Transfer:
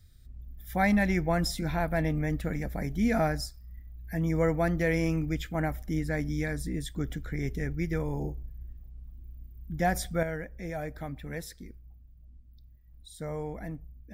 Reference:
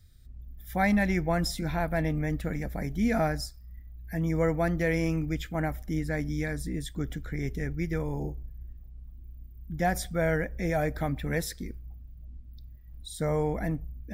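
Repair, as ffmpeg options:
-af "asetnsamples=n=441:p=0,asendcmd='10.23 volume volume 8dB',volume=1"

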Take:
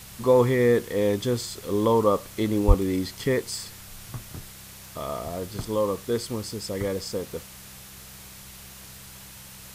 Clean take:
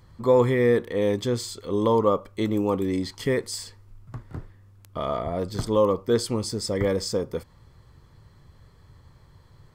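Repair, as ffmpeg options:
-filter_complex "[0:a]bandreject=f=64.9:t=h:w=4,bandreject=f=129.8:t=h:w=4,bandreject=f=194.7:t=h:w=4,asplit=3[s0][s1][s2];[s0]afade=t=out:st=2.67:d=0.02[s3];[s1]highpass=f=140:w=0.5412,highpass=f=140:w=1.3066,afade=t=in:st=2.67:d=0.02,afade=t=out:st=2.79:d=0.02[s4];[s2]afade=t=in:st=2.79:d=0.02[s5];[s3][s4][s5]amix=inputs=3:normalize=0,afwtdn=0.0063,asetnsamples=n=441:p=0,asendcmd='4.29 volume volume 4.5dB',volume=1"

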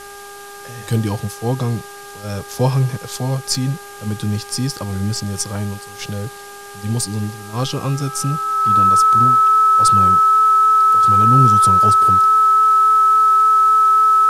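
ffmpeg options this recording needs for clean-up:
-af "bandreject=f=403.6:t=h:w=4,bandreject=f=807.2:t=h:w=4,bandreject=f=1210.8:t=h:w=4,bandreject=f=1614.4:t=h:w=4,bandreject=f=1300:w=30,afwtdn=0.011"

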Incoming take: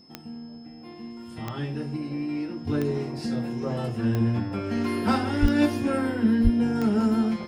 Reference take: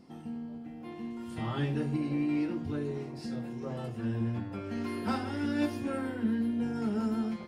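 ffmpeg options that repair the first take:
-filter_complex "[0:a]adeclick=t=4,bandreject=f=5200:w=30,asplit=3[s0][s1][s2];[s0]afade=t=out:st=5.41:d=0.02[s3];[s1]highpass=f=140:w=0.5412,highpass=f=140:w=1.3066,afade=t=in:st=5.41:d=0.02,afade=t=out:st=5.53:d=0.02[s4];[s2]afade=t=in:st=5.53:d=0.02[s5];[s3][s4][s5]amix=inputs=3:normalize=0,asplit=3[s6][s7][s8];[s6]afade=t=out:st=6.43:d=0.02[s9];[s7]highpass=f=140:w=0.5412,highpass=f=140:w=1.3066,afade=t=in:st=6.43:d=0.02,afade=t=out:st=6.55:d=0.02[s10];[s8]afade=t=in:st=6.55:d=0.02[s11];[s9][s10][s11]amix=inputs=3:normalize=0,asetnsamples=n=441:p=0,asendcmd='2.67 volume volume -8.5dB',volume=1"

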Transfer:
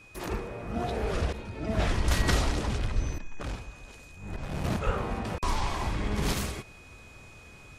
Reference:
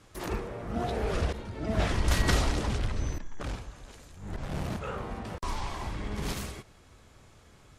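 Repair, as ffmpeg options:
-filter_complex "[0:a]bandreject=f=2500:w=30,asplit=3[s0][s1][s2];[s0]afade=t=out:st=1.86:d=0.02[s3];[s1]highpass=f=140:w=0.5412,highpass=f=140:w=1.3066,afade=t=in:st=1.86:d=0.02,afade=t=out:st=1.98:d=0.02[s4];[s2]afade=t=in:st=1.98:d=0.02[s5];[s3][s4][s5]amix=inputs=3:normalize=0,asplit=3[s6][s7][s8];[s6]afade=t=out:st=2.94:d=0.02[s9];[s7]highpass=f=140:w=0.5412,highpass=f=140:w=1.3066,afade=t=in:st=2.94:d=0.02,afade=t=out:st=3.06:d=0.02[s10];[s8]afade=t=in:st=3.06:d=0.02[s11];[s9][s10][s11]amix=inputs=3:normalize=0,asplit=3[s12][s13][s14];[s12]afade=t=out:st=4.85:d=0.02[s15];[s13]highpass=f=140:w=0.5412,highpass=f=140:w=1.3066,afade=t=in:st=4.85:d=0.02,afade=t=out:st=4.97:d=0.02[s16];[s14]afade=t=in:st=4.97:d=0.02[s17];[s15][s16][s17]amix=inputs=3:normalize=0,asetnsamples=n=441:p=0,asendcmd='4.64 volume volume -5dB',volume=1"

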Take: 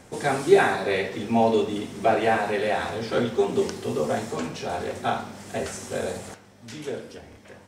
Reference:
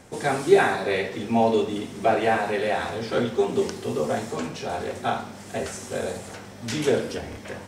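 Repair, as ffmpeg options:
-af "asetnsamples=n=441:p=0,asendcmd='6.34 volume volume 10.5dB',volume=1"

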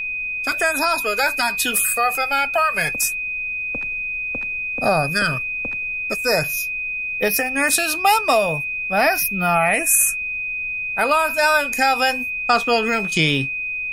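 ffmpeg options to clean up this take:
-af "adeclick=t=4,bandreject=f=2500:w=30,agate=range=0.0891:threshold=0.126"

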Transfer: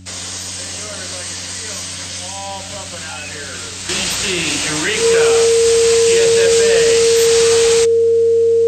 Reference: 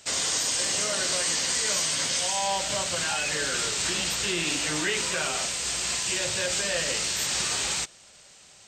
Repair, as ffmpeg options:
-af "bandreject=f=92.5:t=h:w=4,bandreject=f=185:t=h:w=4,bandreject=f=277.5:t=h:w=4,bandreject=f=460:w=30,asetnsamples=n=441:p=0,asendcmd='3.89 volume volume -9dB',volume=1"

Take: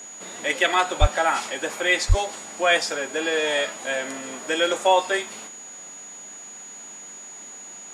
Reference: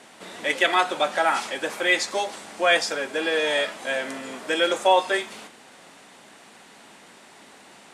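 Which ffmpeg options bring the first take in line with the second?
-filter_complex "[0:a]bandreject=f=6800:w=30,asplit=3[s0][s1][s2];[s0]afade=t=out:st=1:d=0.02[s3];[s1]highpass=f=140:w=0.5412,highpass=f=140:w=1.3066,afade=t=in:st=1:d=0.02,afade=t=out:st=1.12:d=0.02[s4];[s2]afade=t=in:st=1.12:d=0.02[s5];[s3][s4][s5]amix=inputs=3:normalize=0,asplit=3[s6][s7][s8];[s6]afade=t=out:st=2.08:d=0.02[s9];[s7]highpass=f=140:w=0.5412,highpass=f=140:w=1.3066,afade=t=in:st=2.08:d=0.02,afade=t=out:st=2.2:d=0.02[s10];[s8]afade=t=in:st=2.2:d=0.02[s11];[s9][s10][s11]amix=inputs=3:normalize=0"

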